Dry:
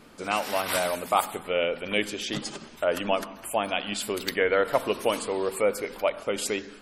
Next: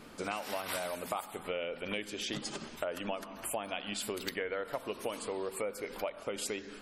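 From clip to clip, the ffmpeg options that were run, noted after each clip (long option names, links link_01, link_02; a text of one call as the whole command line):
ffmpeg -i in.wav -af "acompressor=threshold=-34dB:ratio=6" out.wav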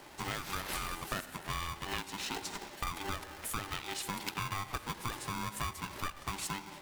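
ffmpeg -i in.wav -af "aeval=exprs='val(0)*sgn(sin(2*PI*590*n/s))':channel_layout=same,volume=-1dB" out.wav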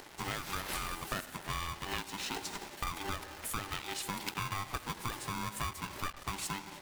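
ffmpeg -i in.wav -af "acompressor=mode=upward:threshold=-49dB:ratio=2.5,acrusher=bits=7:mix=0:aa=0.5" out.wav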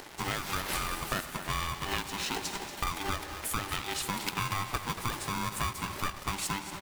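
ffmpeg -i in.wav -af "aecho=1:1:234|468|702|936|1170|1404:0.237|0.133|0.0744|0.0416|0.0233|0.0131,volume=4.5dB" out.wav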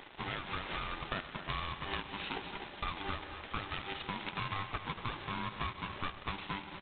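ffmpeg -i in.wav -af "volume=-5.5dB" -ar 8000 -c:a adpcm_g726 -b:a 16k out.wav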